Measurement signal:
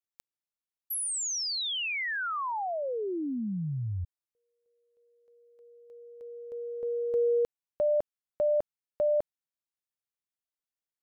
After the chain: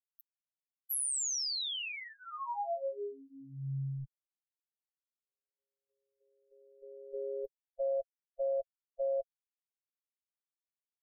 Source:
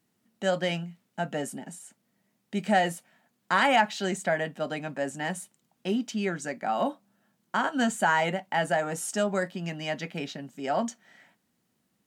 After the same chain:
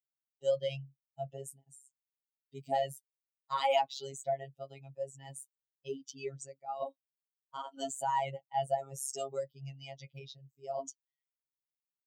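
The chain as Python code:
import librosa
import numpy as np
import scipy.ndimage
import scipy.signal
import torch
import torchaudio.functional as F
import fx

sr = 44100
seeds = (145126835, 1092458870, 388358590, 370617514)

y = fx.bin_expand(x, sr, power=2.0)
y = fx.fixed_phaser(y, sr, hz=670.0, stages=4)
y = fx.robotise(y, sr, hz=136.0)
y = y * librosa.db_to_amplitude(1.5)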